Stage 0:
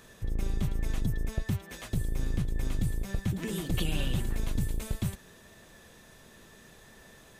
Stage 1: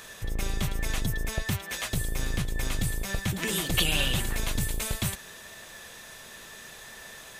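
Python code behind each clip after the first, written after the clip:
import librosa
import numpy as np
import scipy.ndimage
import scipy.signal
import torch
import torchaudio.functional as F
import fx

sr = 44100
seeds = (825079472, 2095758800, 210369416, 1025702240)

y = fx.curve_eq(x, sr, hz=(300.0, 620.0, 2300.0), db=(0, 7, 12))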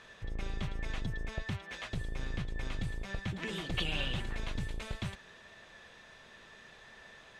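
y = scipy.signal.sosfilt(scipy.signal.butter(2, 3600.0, 'lowpass', fs=sr, output='sos'), x)
y = y * librosa.db_to_amplitude(-7.5)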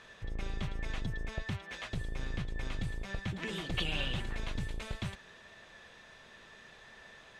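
y = x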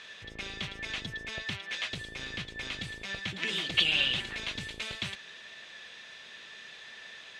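y = fx.weighting(x, sr, curve='D')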